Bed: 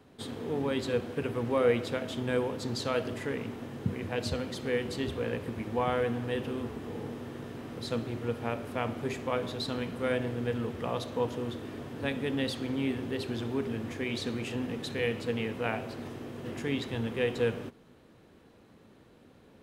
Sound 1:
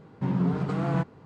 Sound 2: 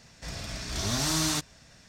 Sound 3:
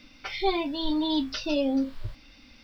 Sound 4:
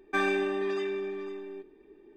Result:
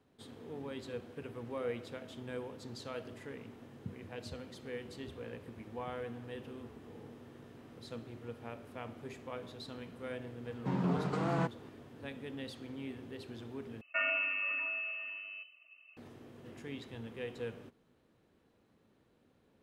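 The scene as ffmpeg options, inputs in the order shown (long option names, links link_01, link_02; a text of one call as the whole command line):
ffmpeg -i bed.wav -i cue0.wav -i cue1.wav -i cue2.wav -i cue3.wav -filter_complex "[0:a]volume=-12.5dB[link_01];[1:a]bass=frequency=250:gain=-7,treble=frequency=4000:gain=3[link_02];[4:a]lowpass=frequency=2600:width_type=q:width=0.5098,lowpass=frequency=2600:width_type=q:width=0.6013,lowpass=frequency=2600:width_type=q:width=0.9,lowpass=frequency=2600:width_type=q:width=2.563,afreqshift=-3000[link_03];[link_01]asplit=2[link_04][link_05];[link_04]atrim=end=13.814[link_06];[link_03]atrim=end=2.16,asetpts=PTS-STARTPTS,volume=-5.5dB[link_07];[link_05]atrim=start=15.966[link_08];[link_02]atrim=end=1.25,asetpts=PTS-STARTPTS,volume=-2.5dB,afade=type=in:duration=0.004:curve=hsin,afade=type=out:start_time=1.246:duration=0.004:curve=hsin,adelay=10440[link_09];[link_06][link_07]acrossfade=duration=0.004:curve1=hsin:curve2=hsin[link_10];[link_10][link_08]acrossfade=duration=0.004:curve1=hsin:curve2=hsin[link_11];[link_11][link_09]amix=inputs=2:normalize=0" out.wav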